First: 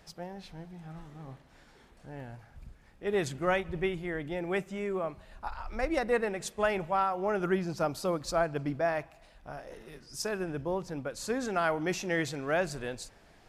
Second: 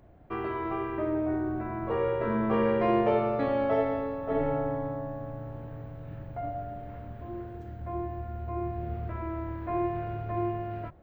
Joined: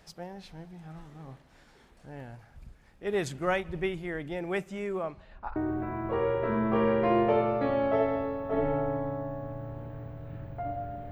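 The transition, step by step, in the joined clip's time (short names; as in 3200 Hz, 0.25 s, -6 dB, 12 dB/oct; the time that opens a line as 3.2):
first
5.02–5.56 LPF 9000 Hz -> 1500 Hz
5.56 switch to second from 1.34 s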